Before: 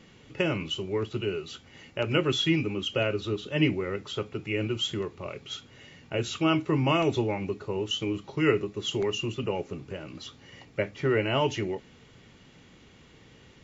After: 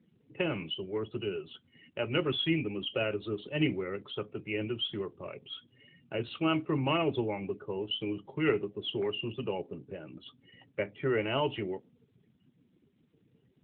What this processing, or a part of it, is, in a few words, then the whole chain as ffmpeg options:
mobile call with aggressive noise cancelling: -af "highpass=f=120:p=1,afftdn=nr=23:nf=-46,volume=-3.5dB" -ar 8000 -c:a libopencore_amrnb -b:a 12200

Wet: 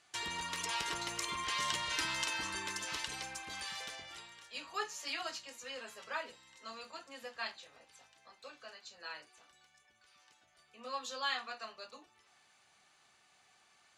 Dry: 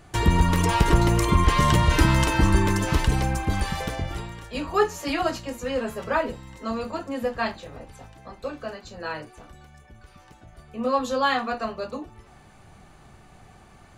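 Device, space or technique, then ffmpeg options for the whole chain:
piezo pickup straight into a mixer: -af "lowpass=5.1k,aderivative,volume=1dB"

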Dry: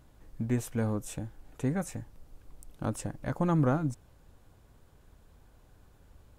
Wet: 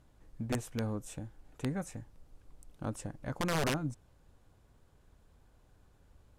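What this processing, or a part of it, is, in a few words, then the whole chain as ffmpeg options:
overflowing digital effects unit: -af "aeval=exprs='(mod(10*val(0)+1,2)-1)/10':c=same,lowpass=12k,volume=-5dB"

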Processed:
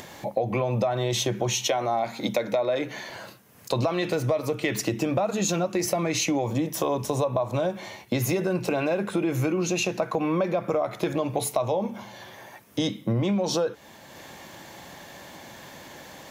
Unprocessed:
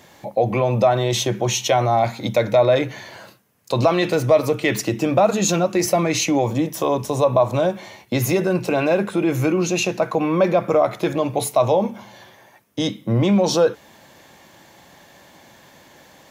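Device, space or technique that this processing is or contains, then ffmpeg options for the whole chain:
upward and downward compression: -filter_complex "[0:a]asettb=1/sr,asplit=3[a][b][c];[a]atrim=end=1.674[d];[b]atrim=start=1.67:end=3.1,asetpts=PTS-STARTPTS,afade=t=in:d=0.004:c=qsin,afade=t=out:st=1.426:d=0.004:c=qsin,highpass=f=160:w=0.5412,highpass=f=160:w=1.3066[e];[c]atrim=start=3.096[f];[d][e]acrossfade=d=0.004:c1=hsin:c2=qsin[g];[g][f]acrossfade=d=0.004:c1=qsin:c2=hsin,acompressor=mode=upward:threshold=-37dB:ratio=2.5,acompressor=threshold=-22dB:ratio=6"

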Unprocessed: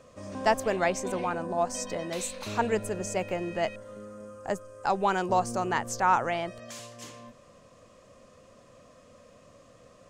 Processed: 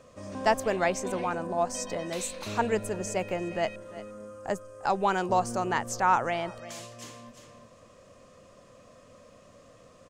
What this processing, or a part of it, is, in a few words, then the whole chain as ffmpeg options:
ducked delay: -filter_complex "[0:a]asplit=3[a][b][c];[b]adelay=350,volume=-6dB[d];[c]apad=whole_len=460525[e];[d][e]sidechaincompress=threshold=-50dB:ratio=4:attack=8.8:release=298[f];[a][f]amix=inputs=2:normalize=0"

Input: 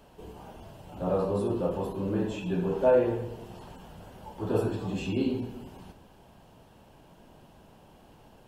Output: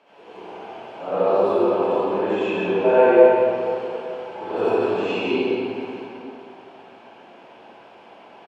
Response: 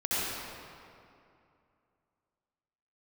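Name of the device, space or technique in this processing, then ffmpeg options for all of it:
station announcement: -filter_complex "[0:a]highpass=440,lowpass=3.6k,equalizer=f=2.3k:t=o:w=0.22:g=9,aecho=1:1:125.4|174.9:0.251|0.316[a];[1:a]atrim=start_sample=2205[b];[a][b]afir=irnorm=-1:irlink=0,volume=2.5dB"

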